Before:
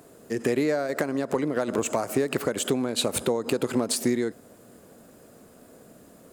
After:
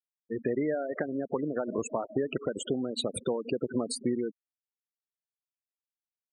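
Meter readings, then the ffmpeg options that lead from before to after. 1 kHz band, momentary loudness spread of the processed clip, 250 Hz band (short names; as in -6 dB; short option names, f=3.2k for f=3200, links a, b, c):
-7.0 dB, 3 LU, -5.0 dB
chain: -af "bandreject=f=7.6k:w=17,afftfilt=real='re*gte(hypot(re,im),0.0708)':imag='im*gte(hypot(re,im),0.0708)':win_size=1024:overlap=0.75,volume=-5dB"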